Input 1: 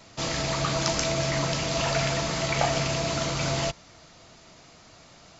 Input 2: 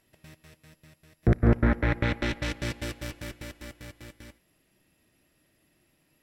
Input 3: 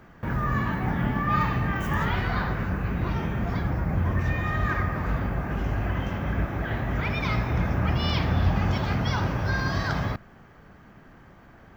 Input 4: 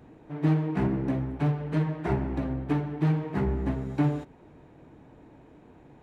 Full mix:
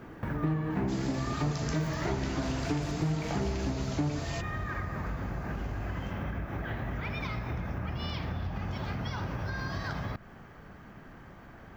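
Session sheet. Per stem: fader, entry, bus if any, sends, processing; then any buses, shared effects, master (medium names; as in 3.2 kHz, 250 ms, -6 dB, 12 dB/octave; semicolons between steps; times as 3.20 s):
-8.5 dB, 0.70 s, no send, vibrato 0.58 Hz 30 cents
-10.5 dB, 0.00 s, no send, none
+1.0 dB, 0.00 s, no send, compression, threshold -31 dBFS, peak gain reduction 13.5 dB
+3.0 dB, 0.00 s, no send, treble shelf 5 kHz -10.5 dB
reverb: none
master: compression 2.5:1, threshold -31 dBFS, peak gain reduction 10 dB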